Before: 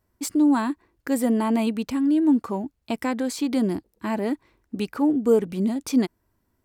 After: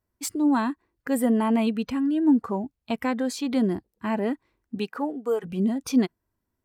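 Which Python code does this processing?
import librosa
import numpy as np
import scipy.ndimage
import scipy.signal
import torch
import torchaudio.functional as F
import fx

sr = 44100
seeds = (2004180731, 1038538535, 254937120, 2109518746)

y = fx.noise_reduce_blind(x, sr, reduce_db=9)
y = fx.highpass(y, sr, hz=fx.line((4.78, 190.0), (5.43, 770.0)), slope=12, at=(4.78, 5.43), fade=0.02)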